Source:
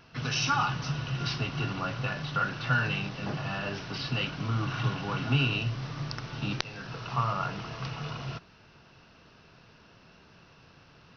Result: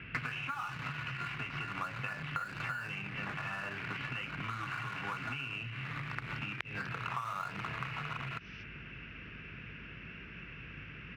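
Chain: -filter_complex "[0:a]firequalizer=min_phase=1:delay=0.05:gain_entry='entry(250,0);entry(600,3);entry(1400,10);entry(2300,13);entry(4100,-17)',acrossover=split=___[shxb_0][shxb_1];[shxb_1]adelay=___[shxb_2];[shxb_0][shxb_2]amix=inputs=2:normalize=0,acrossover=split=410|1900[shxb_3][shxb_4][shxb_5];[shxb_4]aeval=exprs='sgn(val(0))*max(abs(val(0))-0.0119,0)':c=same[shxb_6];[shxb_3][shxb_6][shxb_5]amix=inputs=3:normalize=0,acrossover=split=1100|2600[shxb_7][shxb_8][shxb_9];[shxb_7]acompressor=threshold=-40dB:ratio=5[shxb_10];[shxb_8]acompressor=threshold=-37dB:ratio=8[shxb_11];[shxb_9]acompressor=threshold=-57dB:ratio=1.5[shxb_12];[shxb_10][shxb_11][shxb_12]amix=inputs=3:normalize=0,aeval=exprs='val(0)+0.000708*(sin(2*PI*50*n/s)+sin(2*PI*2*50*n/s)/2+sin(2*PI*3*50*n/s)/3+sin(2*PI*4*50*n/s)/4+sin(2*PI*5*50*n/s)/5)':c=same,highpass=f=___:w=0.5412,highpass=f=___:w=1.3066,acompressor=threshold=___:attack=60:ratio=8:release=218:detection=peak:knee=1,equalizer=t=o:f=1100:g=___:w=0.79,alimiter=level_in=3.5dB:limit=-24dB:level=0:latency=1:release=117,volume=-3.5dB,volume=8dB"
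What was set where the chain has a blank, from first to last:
4600, 250, 40, 40, -49dB, 3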